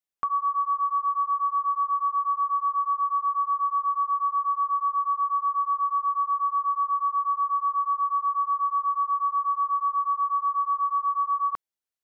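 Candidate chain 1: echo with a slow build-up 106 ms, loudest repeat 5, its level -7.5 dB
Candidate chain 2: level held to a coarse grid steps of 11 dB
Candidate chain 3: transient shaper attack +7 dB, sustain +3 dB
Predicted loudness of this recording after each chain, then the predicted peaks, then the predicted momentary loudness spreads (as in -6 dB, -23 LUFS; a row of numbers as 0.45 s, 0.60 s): -26.0 LUFS, -33.5 LUFS, -23.0 LUFS; -18.0 dBFS, -26.0 dBFS, -12.5 dBFS; 1 LU, 0 LU, 1 LU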